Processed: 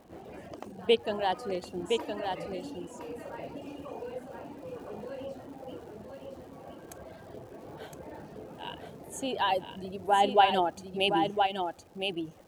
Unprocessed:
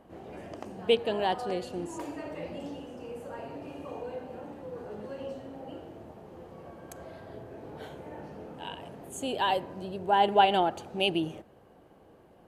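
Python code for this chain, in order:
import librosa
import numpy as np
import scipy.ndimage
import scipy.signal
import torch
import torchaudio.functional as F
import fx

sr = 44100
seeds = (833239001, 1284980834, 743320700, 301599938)

y = fx.dereverb_blind(x, sr, rt60_s=0.97)
y = fx.dmg_crackle(y, sr, seeds[0], per_s=290.0, level_db=-51.0)
y = y + 10.0 ** (-5.0 / 20.0) * np.pad(y, (int(1014 * sr / 1000.0), 0))[:len(y)]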